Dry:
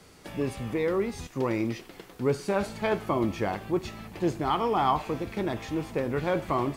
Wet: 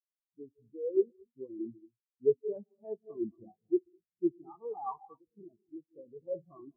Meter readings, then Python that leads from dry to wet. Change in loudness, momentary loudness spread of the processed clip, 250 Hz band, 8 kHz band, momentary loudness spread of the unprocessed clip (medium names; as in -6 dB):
-6.5 dB, 21 LU, -9.0 dB, under -35 dB, 7 LU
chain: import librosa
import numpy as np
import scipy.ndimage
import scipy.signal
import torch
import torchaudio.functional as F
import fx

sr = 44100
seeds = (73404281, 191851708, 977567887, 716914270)

y = fx.air_absorb(x, sr, metres=170.0)
y = fx.rev_gated(y, sr, seeds[0], gate_ms=260, shape='rising', drr_db=5.5)
y = fx.spectral_expand(y, sr, expansion=4.0)
y = y * 10.0 ** (-4.0 / 20.0)